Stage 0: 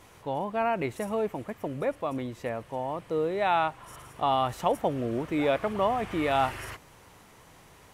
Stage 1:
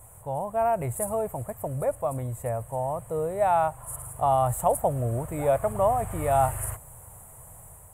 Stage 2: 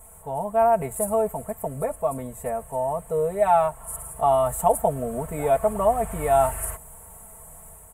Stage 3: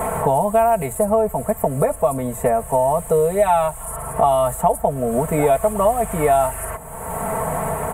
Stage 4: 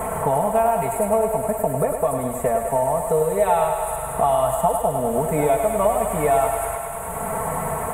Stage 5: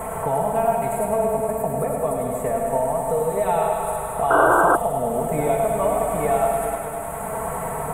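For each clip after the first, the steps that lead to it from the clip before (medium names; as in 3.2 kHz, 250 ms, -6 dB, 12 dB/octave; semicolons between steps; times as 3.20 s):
FFT filter 120 Hz 0 dB, 210 Hz -15 dB, 330 Hz -20 dB, 630 Hz -5 dB, 3.1 kHz -24 dB, 5.4 kHz -27 dB, 8.1 kHz +10 dB; level rider gain up to 3 dB; treble shelf 7.6 kHz -6.5 dB; trim +8 dB
comb 4.5 ms, depth 98%
three bands compressed up and down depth 100%; trim +4.5 dB
thinning echo 102 ms, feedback 84%, high-pass 310 Hz, level -6 dB; trim -3.5 dB
on a send at -3 dB: reverberation RT60 3.4 s, pre-delay 20 ms; on the sum: painted sound noise, 4.30–4.76 s, 290–1600 Hz -13 dBFS; trim -3.5 dB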